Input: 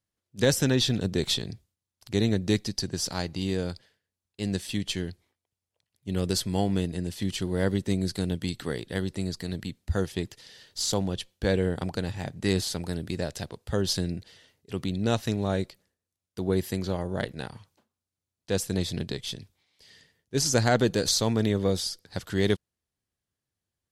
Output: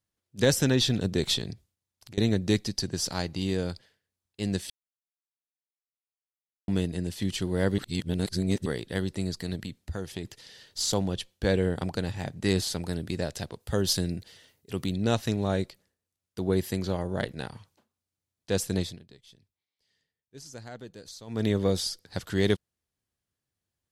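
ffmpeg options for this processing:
ffmpeg -i in.wav -filter_complex "[0:a]asettb=1/sr,asplit=3[link_01][link_02][link_03];[link_01]atrim=end=1.534[link_04];[link_02]atrim=start=1.53:end=2.18,asetpts=PTS-STARTPTS,afade=type=in:duration=0.004:curve=qsin,afade=type=out:start_time=0.646:duration=0.004:curve=qsin,acompressor=threshold=-44dB:ratio=6:attack=3.2:release=140:knee=1:detection=peak[link_05];[link_03]atrim=start=2.176[link_06];[link_04][link_05]acrossfade=duration=0.004:curve1=hsin:curve2=qsin[link_07];[link_07][link_06]acrossfade=duration=0.004:curve1=qsin:curve2=hsin,asettb=1/sr,asplit=3[link_08][link_09][link_10];[link_08]atrim=end=9.554[link_11];[link_09]atrim=start=9.55:end=10.25,asetpts=PTS-STARTPTS,afade=type=in:duration=0.004:curve=qsin,afade=type=out:start_time=0.696:duration=0.004:curve=qsin,acompressor=threshold=-31dB:ratio=3:attack=3.2:release=140:knee=1:detection=peak[link_12];[link_10]atrim=start=10.246[link_13];[link_11][link_12]acrossfade=duration=0.004:curve1=hsin:curve2=qsin[link_14];[link_14][link_13]acrossfade=duration=0.004:curve1=qsin:curve2=hsin,asettb=1/sr,asplit=3[link_15][link_16][link_17];[link_15]atrim=end=13.604[link_18];[link_16]atrim=start=13.6:end=14.95,asetpts=PTS-STARTPTS,afade=type=in:duration=0.004:curve=qsin,afade=type=out:start_time=1.346:duration=0.004:curve=qsin,highshelf=frequency=11000:gain=12[link_19];[link_17]atrim=start=14.946[link_20];[link_18][link_19]acrossfade=duration=0.004:curve1=hsin:curve2=qsin[link_21];[link_21][link_20]acrossfade=duration=0.004:curve1=qsin:curve2=hsin,asplit=7[link_22][link_23][link_24][link_25][link_26][link_27][link_28];[link_22]atrim=end=4.7,asetpts=PTS-STARTPTS,afade=type=out:start_time=4.696:duration=0.004:curve=hsin[link_29];[link_23]atrim=start=4.7:end=6.68,asetpts=PTS-STARTPTS,volume=0[link_30];[link_24]atrim=start=6.68:end=7.782,asetpts=PTS-STARTPTS,afade=type=in:duration=0.004:curve=hsin[link_31];[link_25]atrim=start=7.778:end=8.662,asetpts=PTS-STARTPTS,areverse[link_32];[link_26]atrim=start=8.658:end=18.99,asetpts=PTS-STARTPTS,afade=type=out:start_time=10.122:duration=0.21:silence=0.0944061[link_33];[link_27]atrim=start=18.99:end=21.27,asetpts=PTS-STARTPTS,volume=-20.5dB[link_34];[link_28]atrim=start=21.27,asetpts=PTS-STARTPTS,afade=type=in:duration=0.21:silence=0.0944061[link_35];[link_29][link_30][link_31]concat=n=3:v=0:a=1[link_36];[link_36][link_32]acrossfade=duration=0.004:curve1=hsin:curve2=hsin[link_37];[link_33][link_34][link_35]concat=n=3:v=0:a=1[link_38];[link_37][link_38]acrossfade=duration=0.004:curve1=hsin:curve2=hsin" out.wav

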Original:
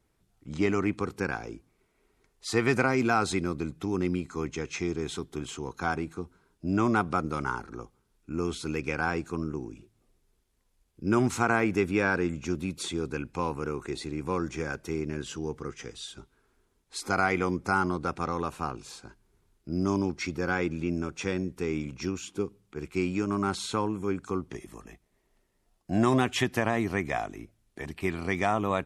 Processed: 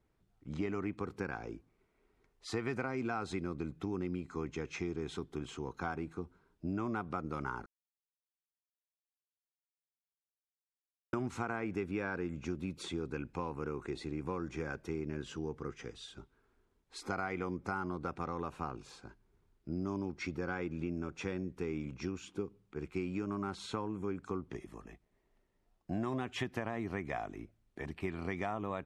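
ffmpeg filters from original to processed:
ffmpeg -i in.wav -filter_complex "[0:a]asplit=3[link_01][link_02][link_03];[link_01]atrim=end=7.66,asetpts=PTS-STARTPTS,afade=type=out:start_time=7.656:duration=0.004:curve=hsin[link_04];[link_02]atrim=start=7.66:end=11.13,asetpts=PTS-STARTPTS,volume=0[link_05];[link_03]atrim=start=11.13,asetpts=PTS-STARTPTS,afade=type=in:duration=0.004:curve=hsin[link_06];[link_04][link_05][link_06]concat=n=3:v=0:a=1,lowpass=frequency=2500:poles=1,acompressor=threshold=-30dB:ratio=4,volume=-3.5dB" out.wav

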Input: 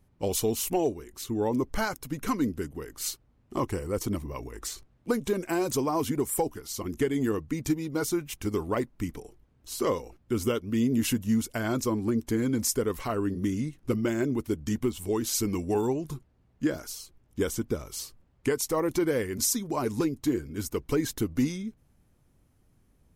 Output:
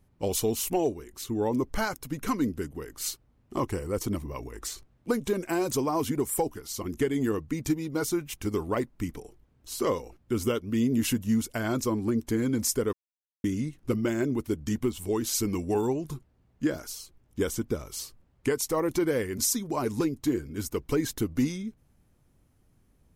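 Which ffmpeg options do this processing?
ffmpeg -i in.wav -filter_complex "[0:a]asplit=3[link_01][link_02][link_03];[link_01]atrim=end=12.93,asetpts=PTS-STARTPTS,afade=type=out:start_time=12.926:duration=0.004:curve=hsin[link_04];[link_02]atrim=start=12.93:end=13.44,asetpts=PTS-STARTPTS,volume=0[link_05];[link_03]atrim=start=13.44,asetpts=PTS-STARTPTS,afade=type=in:duration=0.004:curve=hsin[link_06];[link_04][link_05][link_06]concat=n=3:v=0:a=1" out.wav

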